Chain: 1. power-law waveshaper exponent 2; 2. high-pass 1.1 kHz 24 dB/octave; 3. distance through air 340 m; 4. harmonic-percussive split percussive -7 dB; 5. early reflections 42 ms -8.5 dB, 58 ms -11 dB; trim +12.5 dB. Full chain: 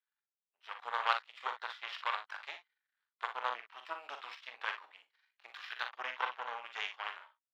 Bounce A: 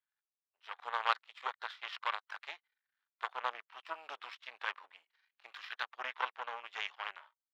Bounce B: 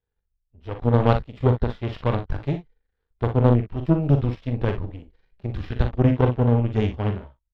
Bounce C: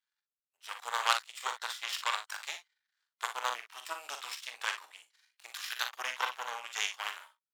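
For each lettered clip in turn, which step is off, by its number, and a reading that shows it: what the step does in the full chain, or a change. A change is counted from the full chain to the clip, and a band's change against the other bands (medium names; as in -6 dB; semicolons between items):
5, echo-to-direct -6.5 dB to none; 2, crest factor change -9.5 dB; 3, 4 kHz band +6.0 dB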